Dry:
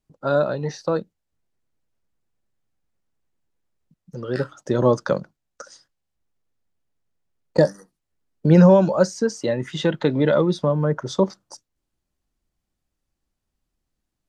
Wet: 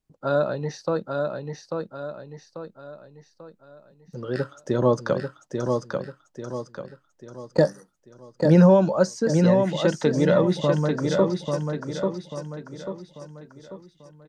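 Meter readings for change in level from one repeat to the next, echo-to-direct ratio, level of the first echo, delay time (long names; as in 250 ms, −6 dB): −7.5 dB, −3.5 dB, −4.5 dB, 841 ms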